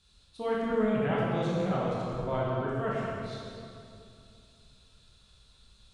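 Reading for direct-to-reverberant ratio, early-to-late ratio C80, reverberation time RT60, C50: -6.0 dB, -1.0 dB, 2.6 s, -3.0 dB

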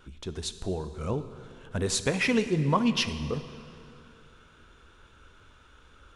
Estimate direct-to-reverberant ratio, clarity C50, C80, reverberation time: 10.5 dB, 11.5 dB, 12.5 dB, 2.6 s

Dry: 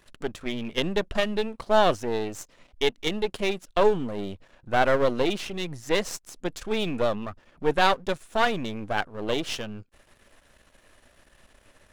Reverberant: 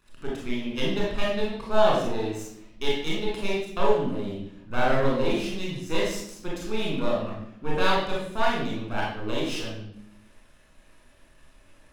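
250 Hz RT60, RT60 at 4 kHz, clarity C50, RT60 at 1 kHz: 1.2 s, 0.65 s, 1.0 dB, 0.65 s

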